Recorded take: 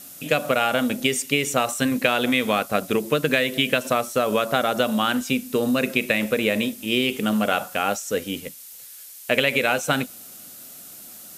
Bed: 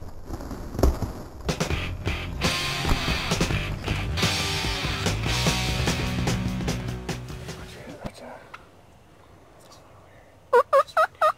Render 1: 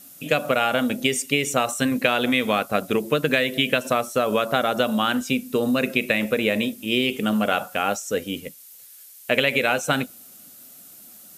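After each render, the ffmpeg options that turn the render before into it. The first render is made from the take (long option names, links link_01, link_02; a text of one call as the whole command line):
ffmpeg -i in.wav -af "afftdn=noise_reduction=6:noise_floor=-42" out.wav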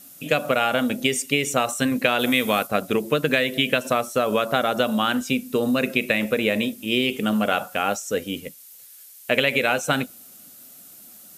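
ffmpeg -i in.wav -filter_complex "[0:a]asettb=1/sr,asplit=3[link_01][link_02][link_03];[link_01]atrim=end=2.194[link_04];[link_02]atrim=start=2.19:end=2.67,asetpts=PTS-STARTPTS,afade=type=in:duration=0.004:curve=qsin,afade=type=out:start_time=0.476:duration=0.004:curve=qsin,highshelf=frequency=7300:gain=11[link_05];[link_03]atrim=start=2.666[link_06];[link_04][link_05]acrossfade=duration=0.004:curve1=hsin:curve2=qsin[link_07];[link_07][link_06]acrossfade=duration=0.004:curve1=qsin:curve2=hsin" out.wav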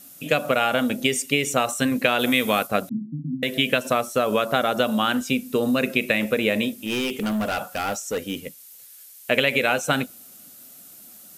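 ffmpeg -i in.wav -filter_complex "[0:a]asettb=1/sr,asplit=3[link_01][link_02][link_03];[link_01]atrim=end=2.894[link_04];[link_02]atrim=start=2.89:end=3.43,asetpts=PTS-STARTPTS,afade=type=in:duration=0.004:curve=qsin,afade=type=out:start_time=0.536:duration=0.004:curve=qsin,asuperpass=centerf=190:order=12:qfactor=1.3[link_05];[link_03]atrim=start=3.426[link_06];[link_04][link_05]acrossfade=duration=0.004:curve1=hsin:curve2=qsin[link_07];[link_07][link_06]acrossfade=duration=0.004:curve1=qsin:curve2=hsin,asettb=1/sr,asplit=3[link_08][link_09][link_10];[link_08]atrim=end=6.814[link_11];[link_09]atrim=start=6.81:end=8.44,asetpts=PTS-STARTPTS,afade=type=in:duration=0.004:curve=qsin,afade=type=out:start_time=1.626:duration=0.004:curve=qsin,volume=21.5dB,asoftclip=hard,volume=-21.5dB[link_12];[link_10]atrim=start=8.436[link_13];[link_11][link_12]acrossfade=duration=0.004:curve1=hsin:curve2=qsin[link_14];[link_14][link_13]acrossfade=duration=0.004:curve1=qsin:curve2=hsin" out.wav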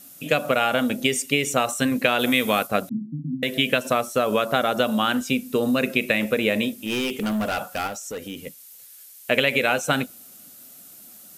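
ffmpeg -i in.wav -filter_complex "[0:a]asettb=1/sr,asplit=3[link_01][link_02][link_03];[link_01]atrim=end=7.874[link_04];[link_02]atrim=start=7.87:end=8.47,asetpts=PTS-STARTPTS,afade=type=in:duration=0.004:curve=qsin,afade=type=out:start_time=0.596:duration=0.004:curve=qsin,acompressor=threshold=-32dB:ratio=2.5:attack=3.2:release=140:knee=1:detection=peak[link_05];[link_03]atrim=start=8.466[link_06];[link_04][link_05]acrossfade=duration=0.004:curve1=hsin:curve2=qsin[link_07];[link_07][link_06]acrossfade=duration=0.004:curve1=qsin:curve2=hsin" out.wav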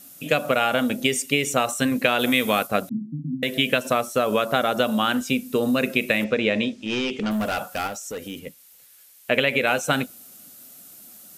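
ffmpeg -i in.wav -filter_complex "[0:a]asettb=1/sr,asplit=3[link_01][link_02][link_03];[link_01]atrim=end=6.244[link_04];[link_02]atrim=start=6.24:end=7.31,asetpts=PTS-STARTPTS,afade=type=in:duration=0.004:curve=qsin,afade=type=out:start_time=1.066:duration=0.004:curve=qsin,lowpass=frequency=6200:width=0.5412,lowpass=frequency=6200:width=1.3066[link_05];[link_03]atrim=start=7.306[link_06];[link_04][link_05]acrossfade=duration=0.004:curve1=hsin:curve2=qsin[link_07];[link_07][link_06]acrossfade=duration=0.004:curve1=qsin:curve2=hsin,asettb=1/sr,asplit=3[link_08][link_09][link_10];[link_08]atrim=end=8.394[link_11];[link_09]atrim=start=8.39:end=9.67,asetpts=PTS-STARTPTS,afade=type=in:duration=0.004:curve=qsin,afade=type=out:start_time=1.276:duration=0.004:curve=qsin,bass=frequency=250:gain=0,treble=frequency=4000:gain=-6[link_12];[link_10]atrim=start=9.666[link_13];[link_11][link_12]acrossfade=duration=0.004:curve1=hsin:curve2=qsin[link_14];[link_14][link_13]acrossfade=duration=0.004:curve1=qsin:curve2=hsin" out.wav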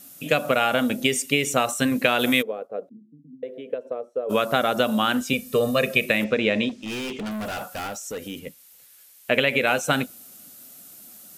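ffmpeg -i in.wav -filter_complex "[0:a]asplit=3[link_01][link_02][link_03];[link_01]afade=type=out:start_time=2.41:duration=0.02[link_04];[link_02]bandpass=frequency=470:width_type=q:width=4.9,afade=type=in:start_time=2.41:duration=0.02,afade=type=out:start_time=4.29:duration=0.02[link_05];[link_03]afade=type=in:start_time=4.29:duration=0.02[link_06];[link_04][link_05][link_06]amix=inputs=3:normalize=0,asettb=1/sr,asplit=3[link_07][link_08][link_09];[link_07]atrim=end=5.334[link_10];[link_08]atrim=start=5.33:end=6.06,asetpts=PTS-STARTPTS,afade=type=in:duration=0.004:curve=qsin,afade=type=out:start_time=0.726:duration=0.004:curve=qsin,aecho=1:1:1.7:0.74,atrim=end_sample=32193[link_11];[link_09]atrim=start=6.056[link_12];[link_10][link_11]acrossfade=duration=0.004:curve1=hsin:curve2=qsin[link_13];[link_13][link_12]acrossfade=duration=0.004:curve1=qsin:curve2=hsin,asettb=1/sr,asplit=3[link_14][link_15][link_16];[link_14]atrim=end=6.694[link_17];[link_15]atrim=start=6.69:end=8.07,asetpts=PTS-STARTPTS,afade=type=in:duration=0.004:curve=qsin,afade=type=out:start_time=1.376:duration=0.004:curve=qsin,volume=28.5dB,asoftclip=hard,volume=-28.5dB[link_18];[link_16]atrim=start=8.066[link_19];[link_17][link_18]acrossfade=duration=0.004:curve1=hsin:curve2=qsin[link_20];[link_20][link_19]acrossfade=duration=0.004:curve1=qsin:curve2=hsin" out.wav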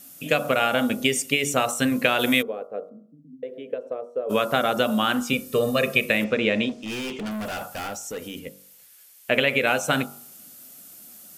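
ffmpeg -i in.wav -af "bandreject=frequency=3900:width=26,bandreject=frequency=47.94:width_type=h:width=4,bandreject=frequency=95.88:width_type=h:width=4,bandreject=frequency=143.82:width_type=h:width=4,bandreject=frequency=191.76:width_type=h:width=4,bandreject=frequency=239.7:width_type=h:width=4,bandreject=frequency=287.64:width_type=h:width=4,bandreject=frequency=335.58:width_type=h:width=4,bandreject=frequency=383.52:width_type=h:width=4,bandreject=frequency=431.46:width_type=h:width=4,bandreject=frequency=479.4:width_type=h:width=4,bandreject=frequency=527.34:width_type=h:width=4,bandreject=frequency=575.28:width_type=h:width=4,bandreject=frequency=623.22:width_type=h:width=4,bandreject=frequency=671.16:width_type=h:width=4,bandreject=frequency=719.1:width_type=h:width=4,bandreject=frequency=767.04:width_type=h:width=4,bandreject=frequency=814.98:width_type=h:width=4,bandreject=frequency=862.92:width_type=h:width=4,bandreject=frequency=910.86:width_type=h:width=4,bandreject=frequency=958.8:width_type=h:width=4,bandreject=frequency=1006.74:width_type=h:width=4,bandreject=frequency=1054.68:width_type=h:width=4,bandreject=frequency=1102.62:width_type=h:width=4,bandreject=frequency=1150.56:width_type=h:width=4,bandreject=frequency=1198.5:width_type=h:width=4,bandreject=frequency=1246.44:width_type=h:width=4,bandreject=frequency=1294.38:width_type=h:width=4,bandreject=frequency=1342.32:width_type=h:width=4,bandreject=frequency=1390.26:width_type=h:width=4,bandreject=frequency=1438.2:width_type=h:width=4" out.wav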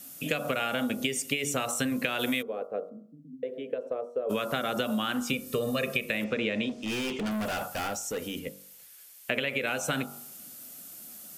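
ffmpeg -i in.wav -filter_complex "[0:a]acrossover=split=530|1100[link_01][link_02][link_03];[link_02]alimiter=level_in=4dB:limit=-24dB:level=0:latency=1,volume=-4dB[link_04];[link_01][link_04][link_03]amix=inputs=3:normalize=0,acompressor=threshold=-26dB:ratio=6" out.wav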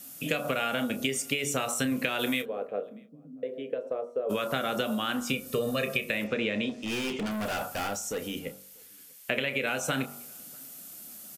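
ffmpeg -i in.wav -filter_complex "[0:a]asplit=2[link_01][link_02];[link_02]adelay=30,volume=-12dB[link_03];[link_01][link_03]amix=inputs=2:normalize=0,asplit=2[link_04][link_05];[link_05]adelay=641.4,volume=-29dB,highshelf=frequency=4000:gain=-14.4[link_06];[link_04][link_06]amix=inputs=2:normalize=0" out.wav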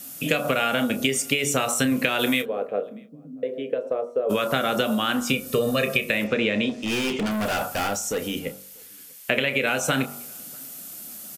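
ffmpeg -i in.wav -af "volume=6.5dB" out.wav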